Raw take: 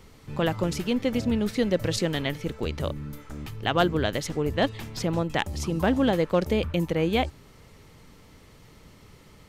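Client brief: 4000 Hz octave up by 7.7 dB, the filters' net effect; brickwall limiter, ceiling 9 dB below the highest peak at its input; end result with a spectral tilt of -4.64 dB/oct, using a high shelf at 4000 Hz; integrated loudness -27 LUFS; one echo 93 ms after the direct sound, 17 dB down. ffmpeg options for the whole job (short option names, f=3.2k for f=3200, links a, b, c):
-af "highshelf=f=4k:g=4,equalizer=f=4k:t=o:g=8,alimiter=limit=-14.5dB:level=0:latency=1,aecho=1:1:93:0.141"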